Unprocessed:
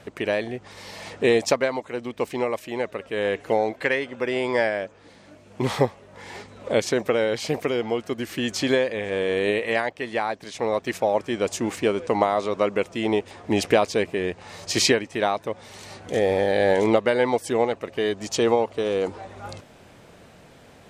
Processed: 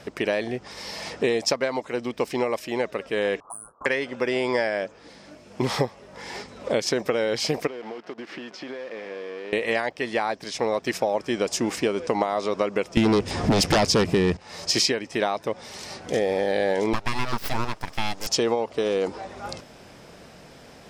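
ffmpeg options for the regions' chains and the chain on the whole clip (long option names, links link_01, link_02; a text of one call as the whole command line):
ffmpeg -i in.wav -filter_complex "[0:a]asettb=1/sr,asplit=3[link_01][link_02][link_03];[link_01]atrim=end=3.404[link_04];[link_02]atrim=start=3.4:end=3.86,asetpts=PTS-STARTPTS,afade=type=in:duration=0.004:curve=qsin,afade=type=out:start_time=0.456:duration=0.004:curve=qsin,lowpass=frequency=3200:width_type=q:width=0.5098,lowpass=frequency=3200:width_type=q:width=0.6013,lowpass=frequency=3200:width_type=q:width=0.9,lowpass=frequency=3200:width_type=q:width=2.563,afreqshift=-3800,acontrast=72,asuperstop=centerf=2900:order=20:qfactor=0.56[link_05];[link_03]atrim=start=3.856[link_06];[link_04][link_05]acrossfade=duration=0.004:curve1=hsin:curve2=qsin[link_07];[link_07][link_06]acrossfade=duration=0.004:curve1=qsin:curve2=hsin,asettb=1/sr,asplit=3[link_08][link_09][link_10];[link_08]atrim=end=7.674[link_11];[link_09]atrim=start=7.67:end=9.53,asetpts=PTS-STARTPTS,afade=type=in:duration=0.004:curve=qsin,afade=type=out:start_time=1.856:duration=0.004:curve=qsin,acompressor=threshold=-32dB:ratio=20:attack=3.2:release=140:knee=1:detection=peak,acrusher=bits=8:dc=4:mix=0:aa=0.000001,highpass=250,lowpass=2500[link_12];[link_10]atrim=start=9.526[link_13];[link_11][link_12]acrossfade=duration=0.004:curve1=hsin:curve2=qsin[link_14];[link_14][link_13]acrossfade=duration=0.004:curve1=qsin:curve2=hsin,asettb=1/sr,asplit=3[link_15][link_16][link_17];[link_15]atrim=end=12.974[link_18];[link_16]atrim=start=12.97:end=14.37,asetpts=PTS-STARTPTS,afade=type=in:duration=0.004:curve=qsin,afade=type=out:start_time=1.396:duration=0.004:curve=qsin,bass=frequency=250:gain=13,treble=frequency=4000:gain=3,aeval=exprs='0.75*sin(PI/2*3.98*val(0)/0.75)':channel_layout=same[link_19];[link_17]atrim=start=14.366[link_20];[link_18][link_19]acrossfade=duration=0.004:curve1=hsin:curve2=qsin[link_21];[link_21][link_20]acrossfade=duration=0.004:curve1=qsin:curve2=hsin,asettb=1/sr,asplit=3[link_22][link_23][link_24];[link_22]atrim=end=16.934[link_25];[link_23]atrim=start=16.93:end=18.27,asetpts=PTS-STARTPTS,afade=type=in:duration=0.004:curve=qsin,afade=type=out:start_time=1.336:duration=0.004:curve=qsin,aemphasis=mode=production:type=cd,aeval=exprs='abs(val(0))':channel_layout=same[link_26];[link_24]atrim=start=18.266[link_27];[link_25][link_26]acrossfade=duration=0.004:curve1=hsin:curve2=qsin[link_28];[link_28][link_27]acrossfade=duration=0.004:curve1=qsin:curve2=hsin,equalizer=frequency=5200:width_type=o:width=0.28:gain=9,acompressor=threshold=-22dB:ratio=5,equalizer=frequency=97:width_type=o:width=0.25:gain=-9.5,volume=2.5dB" out.wav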